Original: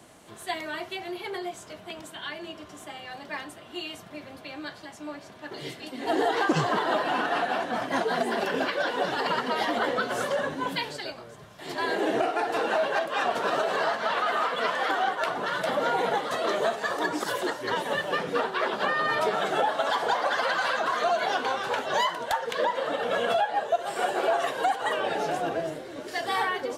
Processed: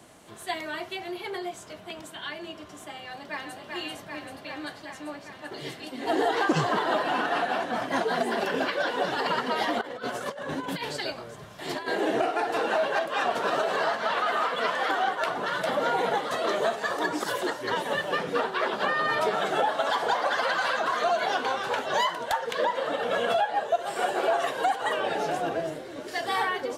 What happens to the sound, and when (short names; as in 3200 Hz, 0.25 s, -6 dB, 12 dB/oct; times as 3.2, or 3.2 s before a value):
3.04–3.6 echo throw 0.39 s, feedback 80%, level -3.5 dB
9.81–11.88 negative-ratio compressor -32 dBFS, ratio -0.5